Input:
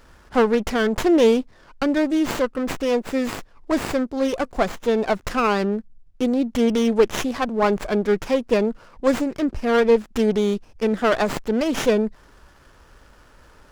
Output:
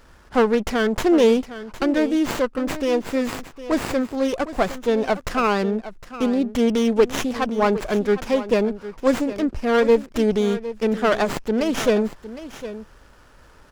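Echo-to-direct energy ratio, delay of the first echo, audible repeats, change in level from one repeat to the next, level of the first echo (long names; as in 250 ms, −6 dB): −14.0 dB, 759 ms, 1, repeats not evenly spaced, −14.0 dB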